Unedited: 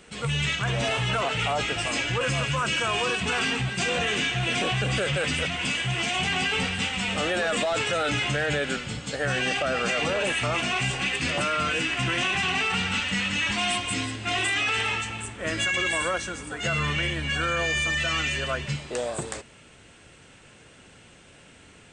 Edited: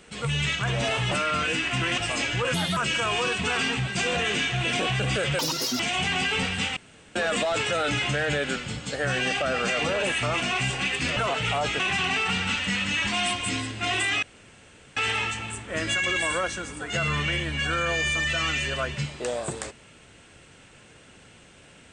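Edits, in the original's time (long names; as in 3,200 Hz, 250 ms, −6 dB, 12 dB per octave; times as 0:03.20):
0:01.11–0:01.74: swap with 0:11.37–0:12.24
0:02.30–0:02.59: play speed 127%
0:05.21–0:06.00: play speed 194%
0:06.97–0:07.36: fill with room tone
0:14.67: splice in room tone 0.74 s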